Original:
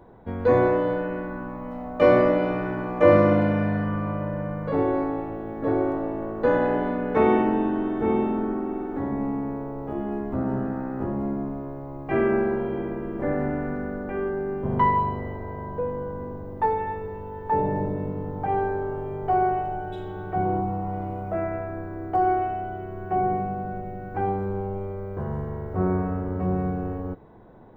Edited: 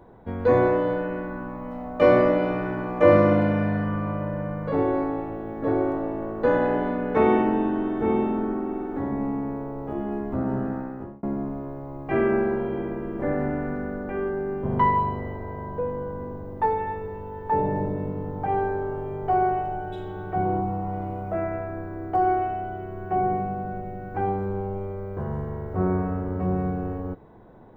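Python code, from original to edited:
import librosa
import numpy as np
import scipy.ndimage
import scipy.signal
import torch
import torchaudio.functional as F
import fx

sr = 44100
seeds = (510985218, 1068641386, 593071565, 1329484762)

y = fx.edit(x, sr, fx.fade_out_span(start_s=10.74, length_s=0.49), tone=tone)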